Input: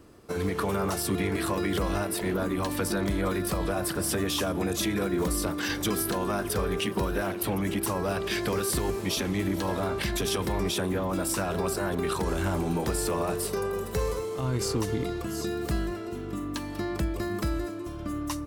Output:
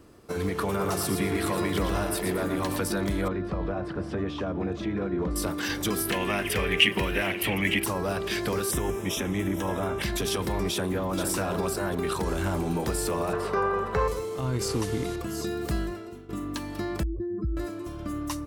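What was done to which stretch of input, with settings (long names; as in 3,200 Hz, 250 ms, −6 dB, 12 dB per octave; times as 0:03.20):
0:00.68–0:02.78: repeating echo 116 ms, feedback 33%, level −6 dB
0:03.28–0:05.36: head-to-tape spacing loss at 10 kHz 35 dB
0:06.10–0:07.84: flat-topped bell 2,400 Hz +14.5 dB 1 octave
0:08.71–0:10.02: Butterworth band-reject 4,400 Hz, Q 2.8
0:10.72–0:11.15: delay throw 450 ms, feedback 15%, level −6.5 dB
0:13.33–0:14.08: drawn EQ curve 320 Hz 0 dB, 1,200 Hz +12 dB, 12,000 Hz −19 dB
0:14.68–0:15.16: linear delta modulator 64 kbit/s, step −35.5 dBFS
0:15.82–0:16.29: fade out, to −14 dB
0:17.03–0:17.57: expanding power law on the bin magnitudes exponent 2.7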